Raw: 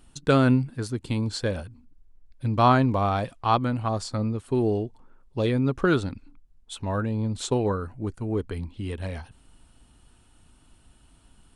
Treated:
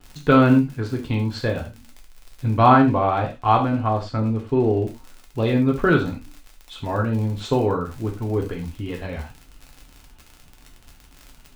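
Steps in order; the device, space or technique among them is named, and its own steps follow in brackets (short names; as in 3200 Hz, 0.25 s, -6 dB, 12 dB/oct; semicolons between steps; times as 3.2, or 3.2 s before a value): lo-fi chain (LPF 3200 Hz 12 dB/oct; wow and flutter; crackle 53/s -34 dBFS); 2.66–4.83 high shelf 6700 Hz -12 dB; non-linear reverb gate 0.13 s falling, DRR 0 dB; gain +2.5 dB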